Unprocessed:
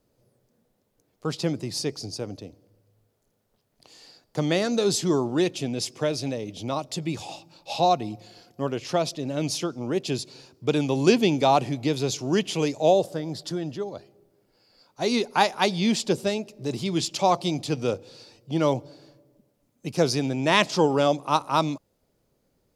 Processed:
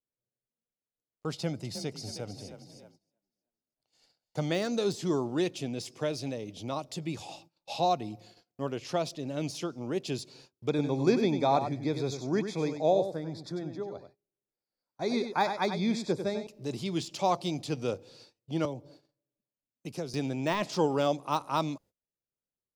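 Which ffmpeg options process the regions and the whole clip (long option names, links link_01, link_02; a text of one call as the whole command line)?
ffmpeg -i in.wav -filter_complex "[0:a]asettb=1/sr,asplit=3[link_01][link_02][link_03];[link_01]atrim=end=1.334[link_04];[link_02]atrim=start=1.33:end=4.5,asetpts=PTS-STARTPTS,afade=type=in:duration=0.004:curve=qsin,afade=type=out:start_time=3.166:duration=0.004:curve=qsin,aecho=1:1:1.4:0.38,atrim=end_sample=139797,asplit=6[link_05][link_06][link_07][link_08][link_09][link_10];[link_06]adelay=314,afreqshift=31,volume=-10dB[link_11];[link_07]adelay=628,afreqshift=62,volume=-16.7dB[link_12];[link_08]adelay=942,afreqshift=93,volume=-23.5dB[link_13];[link_09]adelay=1256,afreqshift=124,volume=-30.2dB[link_14];[link_10]adelay=1570,afreqshift=155,volume=-37dB[link_15];[link_05][link_11][link_12][link_13][link_14][link_15]amix=inputs=6:normalize=0,atrim=end_sample=139797[link_16];[link_03]atrim=start=4.496[link_17];[link_04][link_16]acrossfade=duration=0.004:curve1=hsin:curve2=qsin[link_18];[link_18][link_17]acrossfade=duration=0.004:curve1=qsin:curve2=hsin,asettb=1/sr,asplit=3[link_19][link_20][link_21];[link_19]atrim=end=10.694[link_22];[link_20]atrim=start=10.69:end=16.47,asetpts=PTS-STARTPTS,afade=type=in:duration=0.004:curve=qsin,afade=type=out:start_time=5.776:duration=0.004:curve=qsin,asuperstop=centerf=2900:order=8:qfactor=3.9,aemphasis=mode=reproduction:type=50kf,aecho=1:1:96:0.376,atrim=end_sample=254898[link_23];[link_21]atrim=start=16.466[link_24];[link_22][link_23]acrossfade=duration=0.004:curve1=hsin:curve2=qsin[link_25];[link_25][link_24]acrossfade=duration=0.004:curve1=qsin:curve2=hsin,asettb=1/sr,asplit=3[link_26][link_27][link_28];[link_26]atrim=end=18.654[link_29];[link_27]atrim=start=18.65:end=20.14,asetpts=PTS-STARTPTS,afade=type=in:duration=0.004:curve=qsin,afade=type=out:start_time=1.486:duration=0.004:curve=qsin,highshelf=frequency=9700:gain=4,acrossover=split=260|630[link_30][link_31][link_32];[link_30]acompressor=threshold=-35dB:ratio=4[link_33];[link_31]acompressor=threshold=-32dB:ratio=4[link_34];[link_32]acompressor=threshold=-41dB:ratio=4[link_35];[link_33][link_34][link_35]amix=inputs=3:normalize=0[link_36];[link_28]atrim=start=20.136[link_37];[link_29][link_36]acrossfade=duration=0.004:curve1=hsin:curve2=qsin[link_38];[link_38][link_37]acrossfade=duration=0.004:curve1=qsin:curve2=hsin,agate=range=-25dB:threshold=-48dB:ratio=16:detection=peak,deesser=0.65,volume=-6dB" out.wav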